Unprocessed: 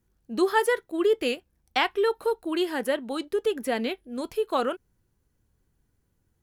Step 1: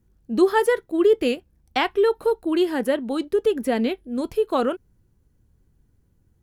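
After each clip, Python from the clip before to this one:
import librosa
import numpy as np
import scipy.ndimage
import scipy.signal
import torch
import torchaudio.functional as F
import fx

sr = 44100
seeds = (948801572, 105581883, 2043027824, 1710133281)

y = fx.low_shelf(x, sr, hz=460.0, db=10.0)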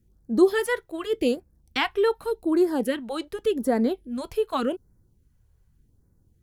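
y = fx.filter_lfo_notch(x, sr, shape='sine', hz=0.86, low_hz=220.0, high_hz=3100.0, q=0.71)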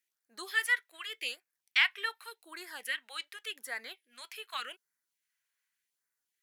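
y = fx.highpass_res(x, sr, hz=2000.0, q=2.2)
y = y * 10.0 ** (-3.5 / 20.0)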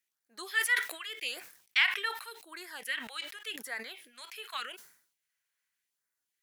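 y = fx.sustainer(x, sr, db_per_s=94.0)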